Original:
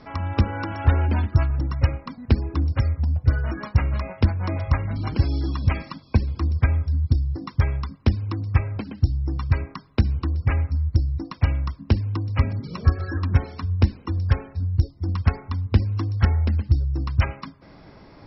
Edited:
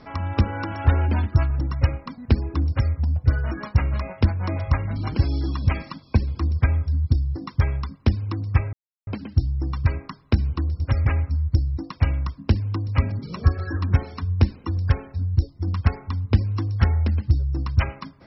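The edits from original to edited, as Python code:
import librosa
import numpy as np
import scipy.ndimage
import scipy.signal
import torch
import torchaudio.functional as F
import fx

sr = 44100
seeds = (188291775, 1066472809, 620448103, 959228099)

y = fx.edit(x, sr, fx.duplicate(start_s=2.68, length_s=0.25, to_s=10.46),
    fx.insert_silence(at_s=8.73, length_s=0.34), tone=tone)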